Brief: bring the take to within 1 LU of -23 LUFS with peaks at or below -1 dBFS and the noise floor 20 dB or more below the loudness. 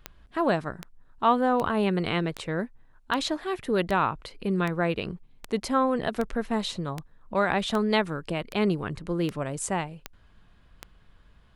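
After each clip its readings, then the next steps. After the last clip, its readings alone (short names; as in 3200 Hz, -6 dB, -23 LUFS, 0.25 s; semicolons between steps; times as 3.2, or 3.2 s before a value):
clicks 15; loudness -27.5 LUFS; peak -9.5 dBFS; loudness target -23.0 LUFS
-> de-click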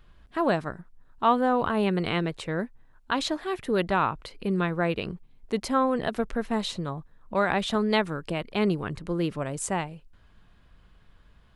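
clicks 0; loudness -27.5 LUFS; peak -9.5 dBFS; loudness target -23.0 LUFS
-> gain +4.5 dB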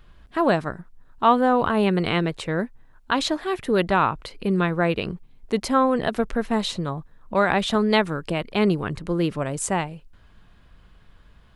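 loudness -23.0 LUFS; peak -5.0 dBFS; noise floor -53 dBFS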